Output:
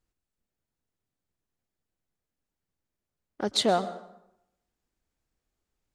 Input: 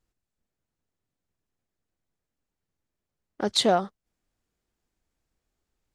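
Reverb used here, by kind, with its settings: plate-style reverb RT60 0.82 s, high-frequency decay 0.7×, pre-delay 105 ms, DRR 14.5 dB; trim -2.5 dB

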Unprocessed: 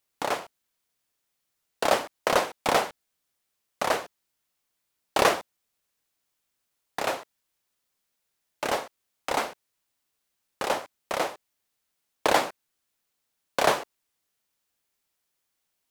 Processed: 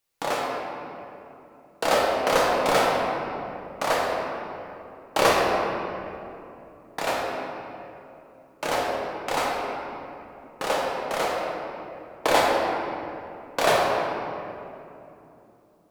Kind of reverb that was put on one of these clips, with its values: simulated room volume 130 m³, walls hard, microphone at 0.61 m; trim -1 dB

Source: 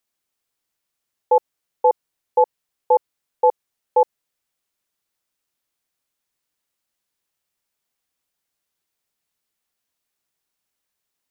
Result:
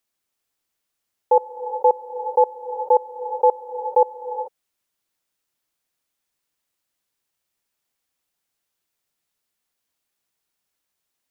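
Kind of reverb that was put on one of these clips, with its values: gated-style reverb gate 460 ms rising, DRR 7.5 dB

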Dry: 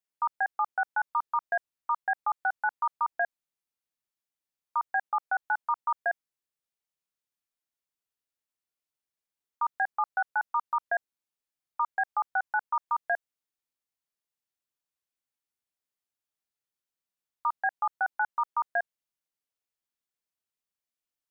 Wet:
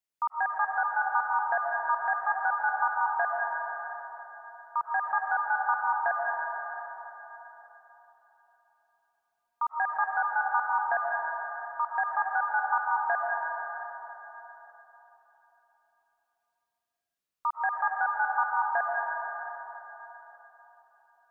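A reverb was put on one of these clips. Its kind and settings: algorithmic reverb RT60 3.9 s, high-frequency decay 0.7×, pre-delay 80 ms, DRR -2 dB; trim -1 dB

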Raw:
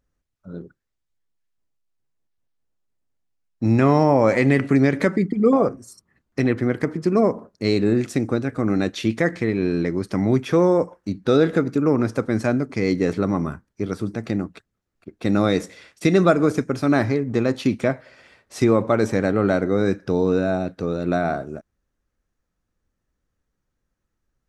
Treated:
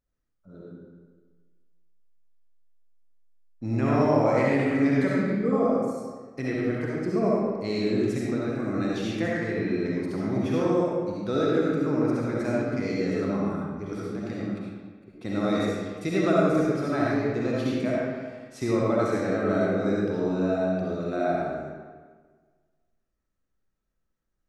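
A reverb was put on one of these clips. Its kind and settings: algorithmic reverb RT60 1.5 s, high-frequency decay 0.75×, pre-delay 25 ms, DRR -6 dB; trim -12 dB

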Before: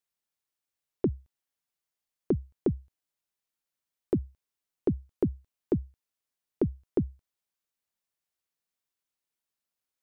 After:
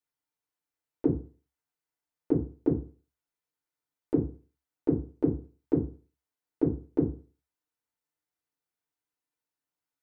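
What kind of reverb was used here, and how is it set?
FDN reverb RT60 0.37 s, low-frequency decay 0.95×, high-frequency decay 0.3×, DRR -6 dB; trim -7.5 dB

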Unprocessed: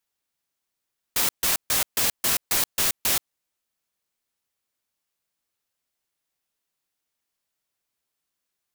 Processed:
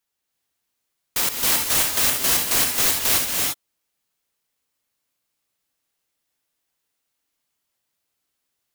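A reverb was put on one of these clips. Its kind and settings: gated-style reverb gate 370 ms rising, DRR -1 dB; trim +1 dB

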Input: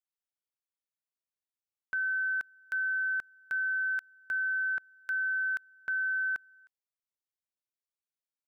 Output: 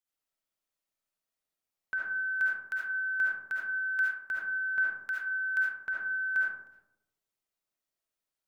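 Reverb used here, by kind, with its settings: algorithmic reverb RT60 0.91 s, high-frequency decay 0.3×, pre-delay 30 ms, DRR -5.5 dB

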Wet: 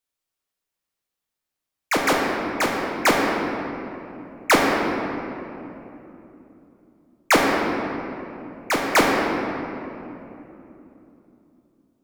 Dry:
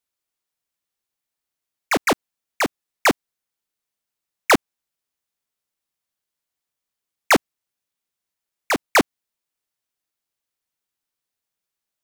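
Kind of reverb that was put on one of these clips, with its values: simulated room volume 150 m³, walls hard, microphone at 0.54 m; trim -2.5 dB

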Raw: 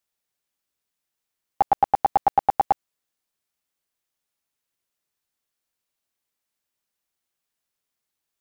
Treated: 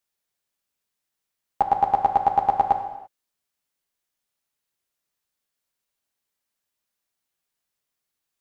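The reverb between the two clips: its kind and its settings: gated-style reverb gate 360 ms falling, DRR 5 dB; trim -1 dB

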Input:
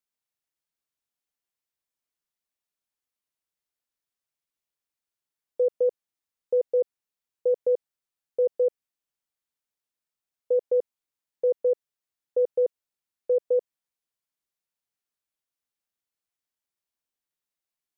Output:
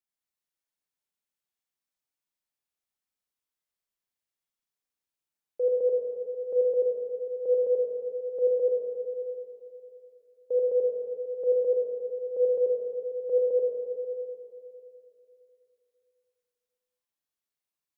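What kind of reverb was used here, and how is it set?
Schroeder reverb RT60 2.9 s, combs from 30 ms, DRR -3 dB; trim -6.5 dB

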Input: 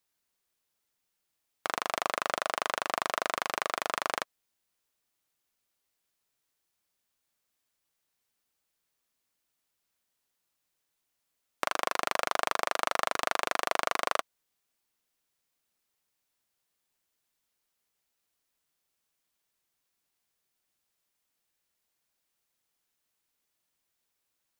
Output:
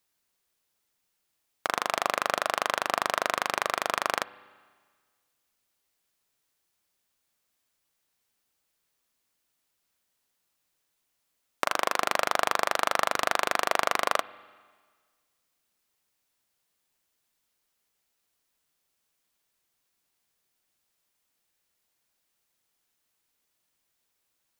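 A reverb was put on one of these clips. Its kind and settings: spring tank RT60 1.6 s, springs 30/48 ms, chirp 30 ms, DRR 18.5 dB; trim +3.5 dB

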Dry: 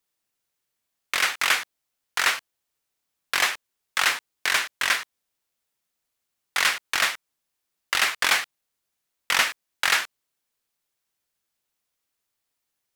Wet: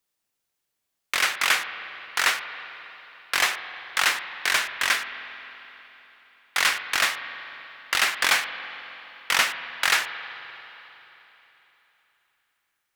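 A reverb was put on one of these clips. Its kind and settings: spring tank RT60 3.6 s, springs 44/52 ms, chirp 35 ms, DRR 9.5 dB

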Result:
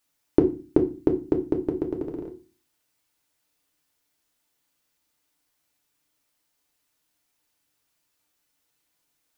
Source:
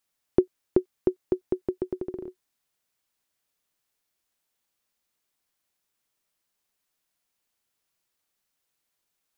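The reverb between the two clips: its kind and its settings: FDN reverb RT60 0.32 s, low-frequency decay 1.6×, high-frequency decay 0.95×, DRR 2 dB; trim +3 dB

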